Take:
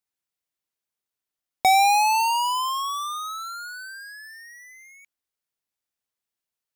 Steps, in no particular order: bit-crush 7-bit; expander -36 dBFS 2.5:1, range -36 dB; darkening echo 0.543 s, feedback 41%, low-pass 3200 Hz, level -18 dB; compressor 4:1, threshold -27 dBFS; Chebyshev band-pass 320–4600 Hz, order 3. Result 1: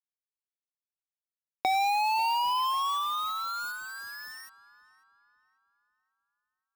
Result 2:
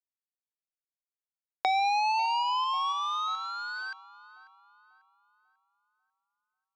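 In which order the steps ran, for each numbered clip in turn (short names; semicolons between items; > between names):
compressor > Chebyshev band-pass > bit-crush > expander > darkening echo; expander > bit-crush > darkening echo > compressor > Chebyshev band-pass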